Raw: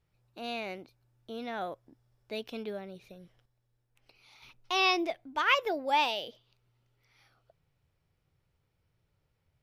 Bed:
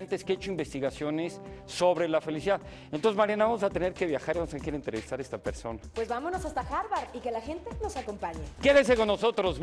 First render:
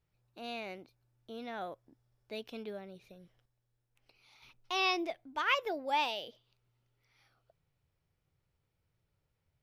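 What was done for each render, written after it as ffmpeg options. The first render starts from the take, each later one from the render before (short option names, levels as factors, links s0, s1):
-af "volume=0.596"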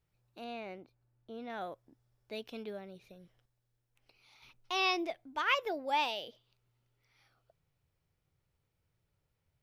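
-filter_complex "[0:a]asettb=1/sr,asplit=3[s0][s1][s2];[s0]atrim=end=0.444[s3];[s1]atrim=start=0.44:end=1.5,asetpts=PTS-STARTPTS,afade=t=in:d=0.004:c=qsin,afade=t=out:st=1.056:d=0.004:c=qsin,highshelf=f=3000:g=-12[s4];[s2]atrim=start=1.496[s5];[s3][s4]acrossfade=d=0.004:c1=hsin:c2=qsin[s6];[s6][s5]acrossfade=d=0.004:c1=qsin:c2=hsin"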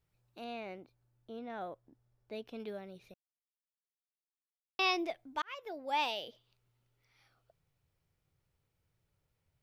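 -filter_complex "[0:a]asettb=1/sr,asplit=3[s0][s1][s2];[s0]atrim=end=1.394[s3];[s1]atrim=start=1.39:end=2.6,asetpts=PTS-STARTPTS,afade=t=in:d=0.004:c=qsin,afade=t=out:st=1.206:d=0.004:c=qsin,highshelf=f=2000:g=-8.5[s4];[s2]atrim=start=2.596[s5];[s3][s4]acrossfade=d=0.004:c1=hsin:c2=qsin[s6];[s6][s5]acrossfade=d=0.004:c1=qsin:c2=hsin,asplit=4[s7][s8][s9][s10];[s7]atrim=end=3.14,asetpts=PTS-STARTPTS,afade=t=out:st=3.136:d=0.004:c=hsin[s11];[s8]atrim=start=3.14:end=4.79,asetpts=PTS-STARTPTS,volume=0[s12];[s9]atrim=start=4.79:end=5.42,asetpts=PTS-STARTPTS,afade=t=in:d=0.004:c=hsin,afade=t=out:st=0.626:d=0.004:c=hsin[s13];[s10]atrim=start=5.42,asetpts=PTS-STARTPTS,afade=t=in:d=0.66[s14];[s11][s12][s13][s14]concat=n=4:v=0:a=1"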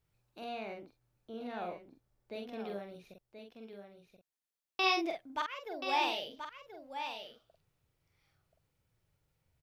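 -filter_complex "[0:a]asplit=2[s0][s1];[s1]adelay=45,volume=0.631[s2];[s0][s2]amix=inputs=2:normalize=0,aecho=1:1:1030:0.376"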